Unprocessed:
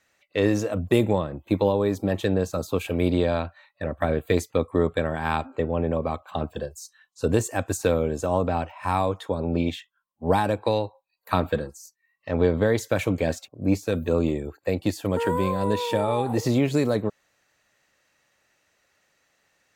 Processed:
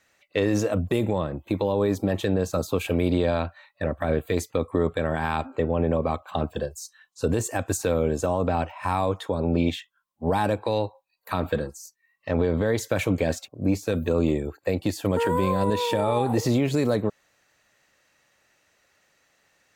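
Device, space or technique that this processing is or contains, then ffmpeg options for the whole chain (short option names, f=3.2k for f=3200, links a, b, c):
stacked limiters: -af "alimiter=limit=-12.5dB:level=0:latency=1:release=128,alimiter=limit=-15.5dB:level=0:latency=1:release=37,volume=2.5dB"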